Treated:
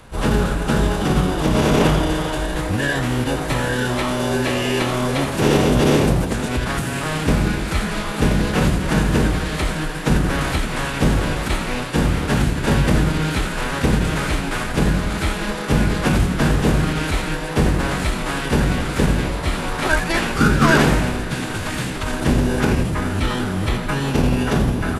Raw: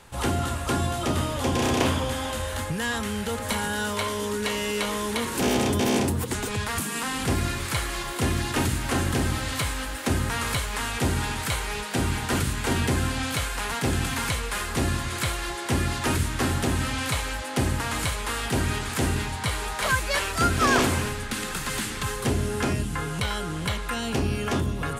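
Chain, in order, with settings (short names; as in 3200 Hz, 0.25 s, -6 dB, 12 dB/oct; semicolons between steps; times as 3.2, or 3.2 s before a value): high shelf 5500 Hz -10 dB; notches 50/100/150 Hz; whine 11000 Hz -55 dBFS; in parallel at -4 dB: sample-and-hold 41×; on the sum: formant-preserving pitch shift -9 st; on a send: frequency-shifting echo 84 ms, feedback 43%, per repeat +130 Hz, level -10.5 dB; on the sum: gain +6 dB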